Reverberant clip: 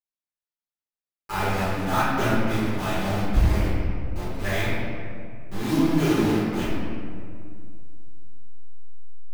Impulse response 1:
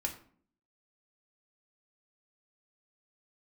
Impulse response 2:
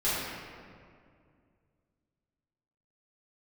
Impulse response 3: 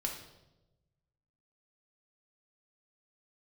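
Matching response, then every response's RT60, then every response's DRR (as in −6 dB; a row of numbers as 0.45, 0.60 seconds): 2; 0.50, 2.2, 1.0 seconds; 1.5, −12.5, 0.0 decibels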